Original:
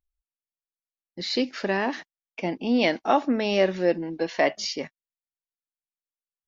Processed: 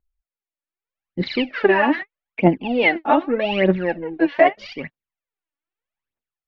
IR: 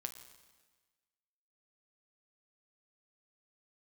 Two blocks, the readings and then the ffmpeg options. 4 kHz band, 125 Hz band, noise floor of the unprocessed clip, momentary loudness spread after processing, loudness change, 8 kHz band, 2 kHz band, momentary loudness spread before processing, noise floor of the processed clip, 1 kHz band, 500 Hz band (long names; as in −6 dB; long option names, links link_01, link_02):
0.0 dB, +10.5 dB, below −85 dBFS, 17 LU, +6.0 dB, can't be measured, +8.5 dB, 12 LU, below −85 dBFS, +6.5 dB, +5.5 dB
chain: -af "dynaudnorm=framelen=550:gausssize=3:maxgain=15dB,aphaser=in_gain=1:out_gain=1:delay=3.6:decay=0.77:speed=0.81:type=triangular,lowpass=frequency=2800:width=0.5412,lowpass=frequency=2800:width=1.3066,volume=-5dB"